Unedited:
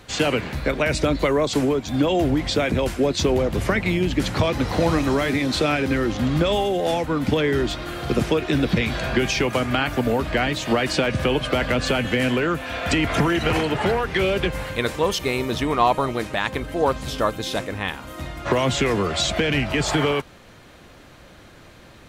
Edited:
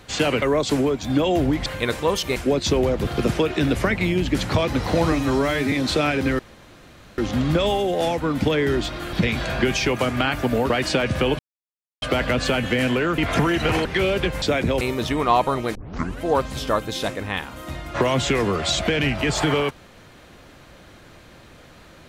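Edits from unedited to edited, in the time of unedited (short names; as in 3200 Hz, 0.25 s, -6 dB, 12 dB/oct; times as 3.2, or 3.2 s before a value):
0.42–1.26 cut
2.5–2.89 swap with 14.62–15.32
4.97–5.37 stretch 1.5×
6.04 insert room tone 0.79 s
7.99–8.67 move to 3.6
10.24–10.74 cut
11.43 insert silence 0.63 s
12.59–12.99 cut
13.66–14.05 cut
16.26 tape start 0.46 s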